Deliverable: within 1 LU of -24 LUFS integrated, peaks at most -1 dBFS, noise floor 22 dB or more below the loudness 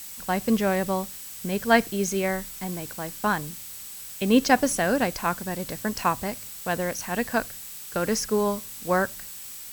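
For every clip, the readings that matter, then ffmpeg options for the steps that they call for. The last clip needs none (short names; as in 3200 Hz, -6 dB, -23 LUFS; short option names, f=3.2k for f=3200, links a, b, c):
steady tone 7900 Hz; tone level -48 dBFS; noise floor -40 dBFS; noise floor target -48 dBFS; loudness -26.0 LUFS; peak -6.0 dBFS; loudness target -24.0 LUFS
-> -af "bandreject=f=7.9k:w=30"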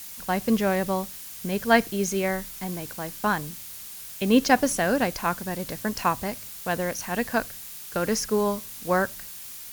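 steady tone none; noise floor -40 dBFS; noise floor target -48 dBFS
-> -af "afftdn=nr=8:nf=-40"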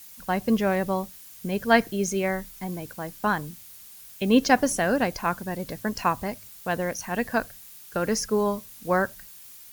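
noise floor -47 dBFS; noise floor target -48 dBFS
-> -af "afftdn=nr=6:nf=-47"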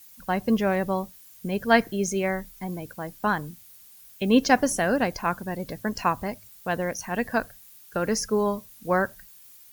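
noise floor -51 dBFS; loudness -26.0 LUFS; peak -6.0 dBFS; loudness target -24.0 LUFS
-> -af "volume=2dB"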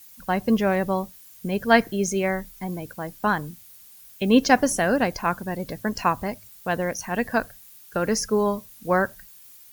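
loudness -24.0 LUFS; peak -4.0 dBFS; noise floor -49 dBFS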